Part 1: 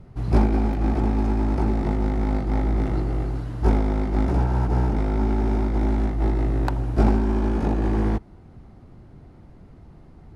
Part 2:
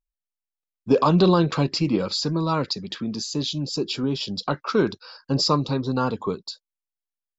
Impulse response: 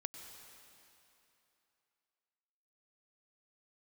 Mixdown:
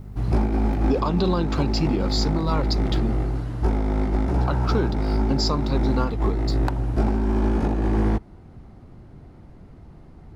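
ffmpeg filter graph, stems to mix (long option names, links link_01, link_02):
-filter_complex "[0:a]volume=1.5dB[link_01];[1:a]acompressor=mode=upward:threshold=-42dB:ratio=2.5,aeval=exprs='val(0)+0.0158*(sin(2*PI*50*n/s)+sin(2*PI*2*50*n/s)/2+sin(2*PI*3*50*n/s)/3+sin(2*PI*4*50*n/s)/4+sin(2*PI*5*50*n/s)/5)':channel_layout=same,aeval=exprs='sgn(val(0))*max(abs(val(0))-0.00299,0)':channel_layout=same,volume=0.5dB,asplit=3[link_02][link_03][link_04];[link_02]atrim=end=3.14,asetpts=PTS-STARTPTS,afade=type=out:start_time=3.136:duration=0.004:curve=hsin[link_05];[link_03]atrim=start=3.14:end=4.41,asetpts=PTS-STARTPTS,volume=0[link_06];[link_04]atrim=start=4.41,asetpts=PTS-STARTPTS,afade=type=in:duration=0.004:curve=hsin[link_07];[link_05][link_06][link_07]concat=n=3:v=0:a=1[link_08];[link_01][link_08]amix=inputs=2:normalize=0,alimiter=limit=-11.5dB:level=0:latency=1:release=343"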